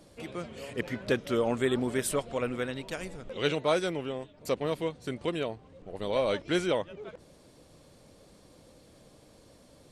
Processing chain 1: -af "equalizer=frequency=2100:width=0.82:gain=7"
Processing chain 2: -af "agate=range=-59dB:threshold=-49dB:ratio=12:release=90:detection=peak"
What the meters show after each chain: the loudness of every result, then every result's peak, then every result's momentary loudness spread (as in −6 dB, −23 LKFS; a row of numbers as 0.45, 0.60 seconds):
−30.0, −31.5 LKFS; −11.0, −14.0 dBFS; 12, 12 LU